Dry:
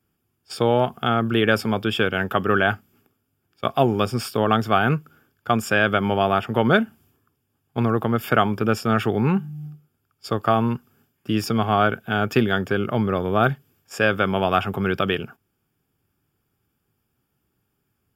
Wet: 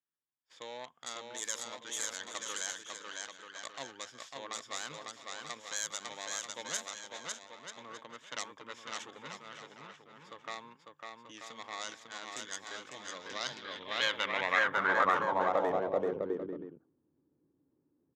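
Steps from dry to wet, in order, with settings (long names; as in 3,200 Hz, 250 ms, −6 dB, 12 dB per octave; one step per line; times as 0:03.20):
stylus tracing distortion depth 0.29 ms
EQ curve with evenly spaced ripples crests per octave 1.1, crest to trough 8 dB
on a send: bouncing-ball delay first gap 550 ms, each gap 0.7×, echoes 5
on the sum: band-pass filter sweep 7,500 Hz → 330 Hz, 0:13.03–0:16.55
in parallel at +3 dB: brickwall limiter −21 dBFS, peak gain reduction 10 dB
on the sum: low-pass that shuts in the quiet parts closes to 1,900 Hz, open at −21.5 dBFS
high-shelf EQ 3,500 Hz −9 dB
level −4 dB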